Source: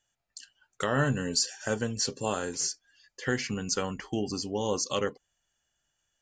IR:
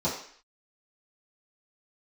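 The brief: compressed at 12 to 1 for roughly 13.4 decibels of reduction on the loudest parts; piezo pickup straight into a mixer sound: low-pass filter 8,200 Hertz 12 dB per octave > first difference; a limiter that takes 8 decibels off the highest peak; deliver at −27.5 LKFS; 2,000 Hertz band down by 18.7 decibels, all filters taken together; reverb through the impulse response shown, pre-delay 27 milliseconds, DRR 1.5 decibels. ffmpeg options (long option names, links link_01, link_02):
-filter_complex "[0:a]equalizer=frequency=2000:width_type=o:gain=-9,acompressor=threshold=-37dB:ratio=12,alimiter=level_in=7dB:limit=-24dB:level=0:latency=1,volume=-7dB,asplit=2[link_01][link_02];[1:a]atrim=start_sample=2205,adelay=27[link_03];[link_02][link_03]afir=irnorm=-1:irlink=0,volume=-11.5dB[link_04];[link_01][link_04]amix=inputs=2:normalize=0,lowpass=8200,aderivative,volume=21dB"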